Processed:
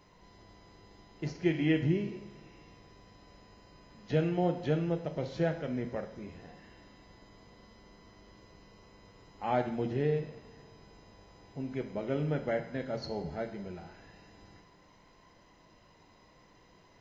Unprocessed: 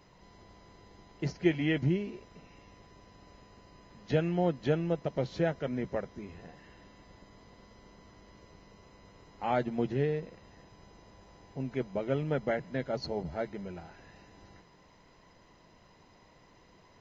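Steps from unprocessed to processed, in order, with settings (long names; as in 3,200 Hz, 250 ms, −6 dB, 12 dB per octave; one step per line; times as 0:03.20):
harmonic and percussive parts rebalanced percussive −4 dB
coupled-rooms reverb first 0.73 s, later 2.9 s, from −20 dB, DRR 6.5 dB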